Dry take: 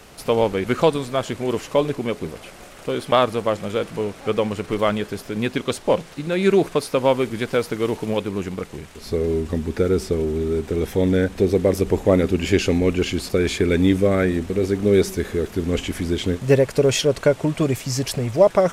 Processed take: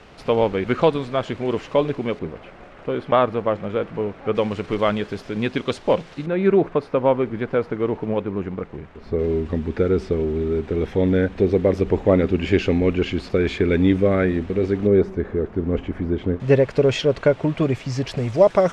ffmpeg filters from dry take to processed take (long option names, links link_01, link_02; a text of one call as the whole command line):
ffmpeg -i in.wav -af "asetnsamples=nb_out_samples=441:pad=0,asendcmd='2.19 lowpass f 2100;4.35 lowpass f 4500;6.26 lowpass f 1700;9.19 lowpass f 3000;14.87 lowpass f 1300;16.4 lowpass f 3300;18.17 lowpass f 5800',lowpass=3500" out.wav